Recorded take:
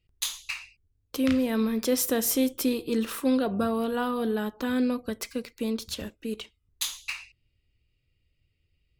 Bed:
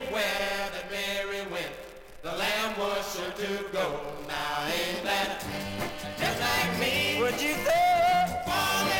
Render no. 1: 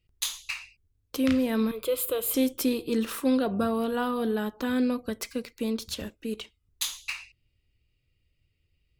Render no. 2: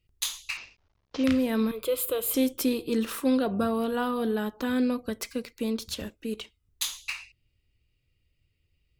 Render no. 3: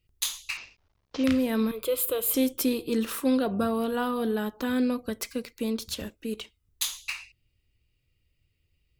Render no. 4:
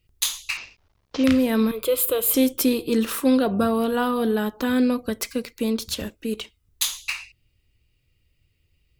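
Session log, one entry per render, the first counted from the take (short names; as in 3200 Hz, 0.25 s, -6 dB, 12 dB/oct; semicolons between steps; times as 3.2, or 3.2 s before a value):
1.71–2.34 fixed phaser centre 1200 Hz, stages 8
0.57–1.24 CVSD 32 kbps
high shelf 9800 Hz +4 dB
gain +5.5 dB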